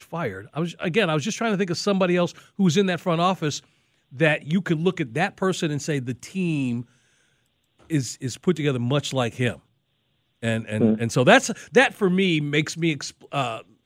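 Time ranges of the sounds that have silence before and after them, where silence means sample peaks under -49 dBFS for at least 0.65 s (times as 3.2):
7.79–9.6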